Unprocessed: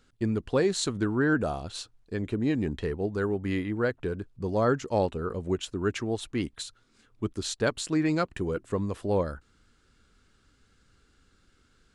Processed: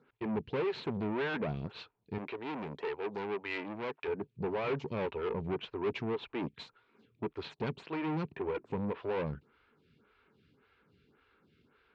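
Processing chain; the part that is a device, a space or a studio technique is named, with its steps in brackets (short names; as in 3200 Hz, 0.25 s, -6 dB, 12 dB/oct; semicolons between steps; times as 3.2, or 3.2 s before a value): vibe pedal into a guitar amplifier (photocell phaser 1.8 Hz; tube stage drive 37 dB, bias 0.55; speaker cabinet 91–3700 Hz, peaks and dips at 150 Hz +8 dB, 210 Hz +3 dB, 420 Hz +8 dB, 940 Hz +8 dB, 2400 Hz +7 dB); 2.18–4.08 RIAA curve recording; gain +2 dB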